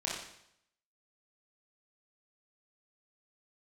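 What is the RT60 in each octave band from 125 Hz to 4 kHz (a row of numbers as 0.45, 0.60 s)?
0.80, 0.70, 0.75, 0.75, 0.70, 0.70 s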